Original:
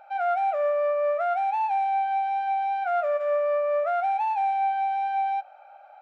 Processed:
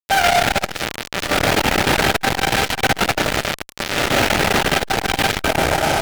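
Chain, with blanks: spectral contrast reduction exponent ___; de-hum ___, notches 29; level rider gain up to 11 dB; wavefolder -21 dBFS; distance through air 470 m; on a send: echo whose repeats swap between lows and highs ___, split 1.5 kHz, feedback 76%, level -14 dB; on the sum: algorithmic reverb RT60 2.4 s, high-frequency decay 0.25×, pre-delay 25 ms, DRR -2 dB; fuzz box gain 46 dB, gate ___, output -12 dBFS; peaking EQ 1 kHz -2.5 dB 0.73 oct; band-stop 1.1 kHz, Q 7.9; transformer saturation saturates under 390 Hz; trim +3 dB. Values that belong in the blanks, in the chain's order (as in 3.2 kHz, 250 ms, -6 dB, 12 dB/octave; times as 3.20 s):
0.4, 438 Hz, 341 ms, -42 dBFS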